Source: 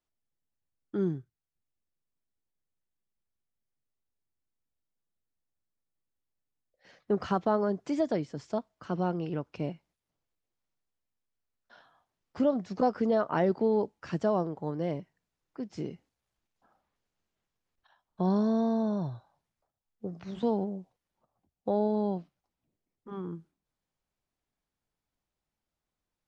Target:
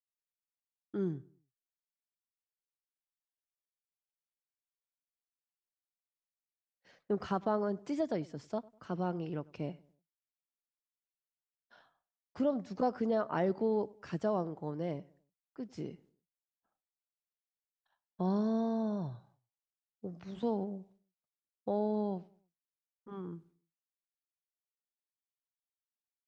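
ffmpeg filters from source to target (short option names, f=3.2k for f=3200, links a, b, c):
-filter_complex "[0:a]agate=range=-33dB:threshold=-58dB:ratio=3:detection=peak,asplit=2[a][b];[b]adelay=99,lowpass=f=2k:p=1,volume=-22.5dB,asplit=2[c][d];[d]adelay=99,lowpass=f=2k:p=1,volume=0.37,asplit=2[e][f];[f]adelay=99,lowpass=f=2k:p=1,volume=0.37[g];[a][c][e][g]amix=inputs=4:normalize=0,volume=-5dB"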